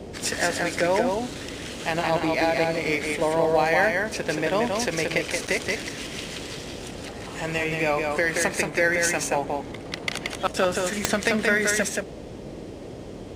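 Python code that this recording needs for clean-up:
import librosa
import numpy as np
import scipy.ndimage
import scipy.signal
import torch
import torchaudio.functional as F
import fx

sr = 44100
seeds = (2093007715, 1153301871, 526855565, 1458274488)

y = fx.fix_declick_ar(x, sr, threshold=10.0)
y = fx.fix_interpolate(y, sr, at_s=(5.47,), length_ms=7.1)
y = fx.noise_reduce(y, sr, print_start_s=12.71, print_end_s=13.21, reduce_db=30.0)
y = fx.fix_echo_inverse(y, sr, delay_ms=177, level_db=-3.5)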